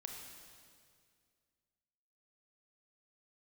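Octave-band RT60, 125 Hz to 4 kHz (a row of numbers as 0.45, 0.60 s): 2.4, 2.4, 2.3, 2.0, 2.0, 2.0 s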